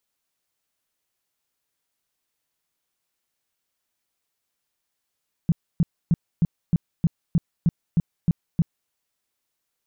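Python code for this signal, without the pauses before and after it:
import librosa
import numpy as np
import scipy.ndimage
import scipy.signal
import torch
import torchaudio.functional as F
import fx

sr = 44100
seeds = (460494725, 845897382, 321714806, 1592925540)

y = fx.tone_burst(sr, hz=167.0, cycles=5, every_s=0.31, bursts=11, level_db=-14.0)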